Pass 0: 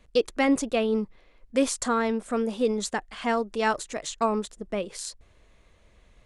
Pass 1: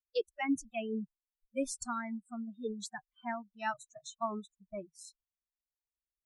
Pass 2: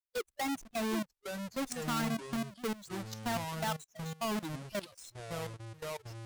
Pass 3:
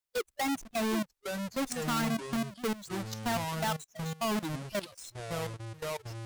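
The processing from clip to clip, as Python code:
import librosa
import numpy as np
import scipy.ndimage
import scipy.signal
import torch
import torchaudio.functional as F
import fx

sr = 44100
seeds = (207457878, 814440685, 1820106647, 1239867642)

y1 = fx.bin_expand(x, sr, power=2.0)
y1 = fx.noise_reduce_blind(y1, sr, reduce_db=28)
y1 = F.gain(torch.from_numpy(y1), -7.5).numpy()
y2 = fx.halfwave_hold(y1, sr)
y2 = fx.level_steps(y2, sr, step_db=18)
y2 = fx.echo_pitch(y2, sr, ms=698, semitones=-6, count=2, db_per_echo=-6.0)
y2 = F.gain(torch.from_numpy(y2), 3.0).numpy()
y3 = 10.0 ** (-28.0 / 20.0) * np.tanh(y2 / 10.0 ** (-28.0 / 20.0))
y3 = F.gain(torch.from_numpy(y3), 4.5).numpy()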